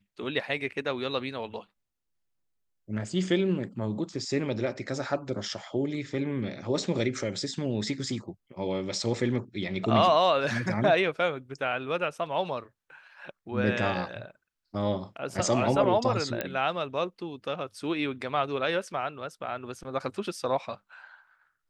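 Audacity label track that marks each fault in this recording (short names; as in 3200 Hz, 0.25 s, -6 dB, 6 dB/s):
16.410000	16.410000	pop -14 dBFS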